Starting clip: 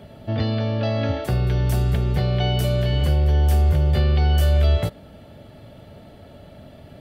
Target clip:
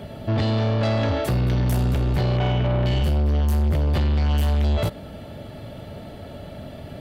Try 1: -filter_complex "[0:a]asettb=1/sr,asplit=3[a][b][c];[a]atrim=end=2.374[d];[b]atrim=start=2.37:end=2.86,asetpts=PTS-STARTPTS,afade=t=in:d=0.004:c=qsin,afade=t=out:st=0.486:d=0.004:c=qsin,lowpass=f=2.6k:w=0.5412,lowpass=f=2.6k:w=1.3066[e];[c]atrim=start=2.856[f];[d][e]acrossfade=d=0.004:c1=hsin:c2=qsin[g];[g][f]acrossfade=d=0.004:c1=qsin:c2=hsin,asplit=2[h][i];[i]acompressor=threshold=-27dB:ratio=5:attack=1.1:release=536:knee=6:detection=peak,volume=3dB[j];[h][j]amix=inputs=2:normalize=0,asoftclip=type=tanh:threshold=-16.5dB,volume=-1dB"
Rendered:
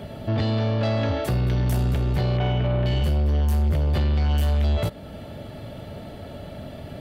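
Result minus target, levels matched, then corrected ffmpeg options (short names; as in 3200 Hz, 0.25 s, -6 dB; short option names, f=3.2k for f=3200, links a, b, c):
compressor: peak gain reduction +9 dB
-filter_complex "[0:a]asettb=1/sr,asplit=3[a][b][c];[a]atrim=end=2.374[d];[b]atrim=start=2.37:end=2.86,asetpts=PTS-STARTPTS,afade=t=in:d=0.004:c=qsin,afade=t=out:st=0.486:d=0.004:c=qsin,lowpass=f=2.6k:w=0.5412,lowpass=f=2.6k:w=1.3066[e];[c]atrim=start=2.856[f];[d][e]acrossfade=d=0.004:c1=hsin:c2=qsin[g];[g][f]acrossfade=d=0.004:c1=qsin:c2=hsin,asplit=2[h][i];[i]acompressor=threshold=-15.5dB:ratio=5:attack=1.1:release=536:knee=6:detection=peak,volume=3dB[j];[h][j]amix=inputs=2:normalize=0,asoftclip=type=tanh:threshold=-16.5dB,volume=-1dB"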